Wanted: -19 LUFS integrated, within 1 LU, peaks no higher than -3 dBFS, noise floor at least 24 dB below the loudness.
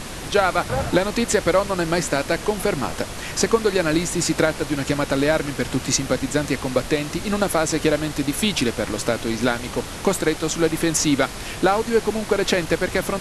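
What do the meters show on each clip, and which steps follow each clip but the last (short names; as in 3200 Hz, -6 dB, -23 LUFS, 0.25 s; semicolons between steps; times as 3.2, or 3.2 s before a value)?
noise floor -33 dBFS; noise floor target -46 dBFS; loudness -21.5 LUFS; peak -4.5 dBFS; loudness target -19.0 LUFS
-> noise print and reduce 13 dB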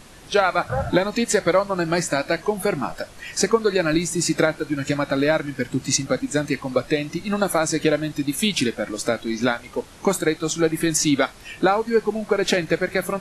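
noise floor -44 dBFS; noise floor target -46 dBFS
-> noise print and reduce 6 dB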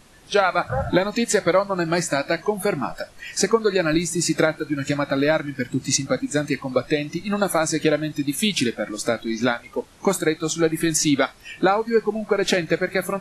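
noise floor -48 dBFS; loudness -22.0 LUFS; peak -4.5 dBFS; loudness target -19.0 LUFS
-> gain +3 dB; limiter -3 dBFS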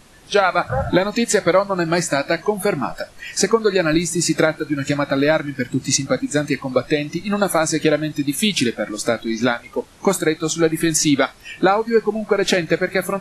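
loudness -19.5 LUFS; peak -3.0 dBFS; noise floor -45 dBFS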